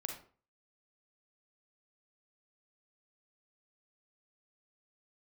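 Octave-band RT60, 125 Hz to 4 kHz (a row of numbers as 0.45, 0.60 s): 0.45, 0.45, 0.45, 0.40, 0.35, 0.30 s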